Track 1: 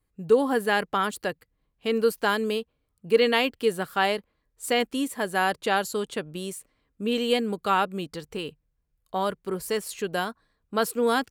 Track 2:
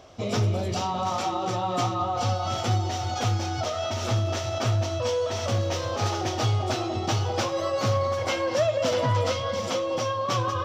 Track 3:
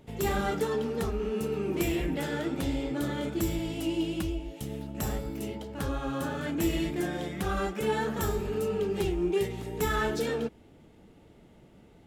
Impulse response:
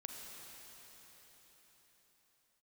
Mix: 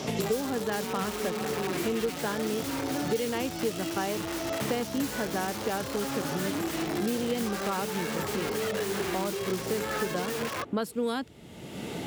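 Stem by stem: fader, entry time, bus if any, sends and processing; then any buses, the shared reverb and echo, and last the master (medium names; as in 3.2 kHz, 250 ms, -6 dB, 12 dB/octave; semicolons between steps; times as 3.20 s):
-9.5 dB, 0.00 s, no send, tilt EQ -3 dB/octave
-11.0 dB, 0.00 s, no send, tone controls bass -4 dB, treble +8 dB; integer overflow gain 23 dB
-1.5 dB, 0.00 s, no send, compression, threshold -33 dBFS, peak gain reduction 10 dB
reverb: none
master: high-pass 100 Hz 12 dB/octave; three bands compressed up and down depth 100%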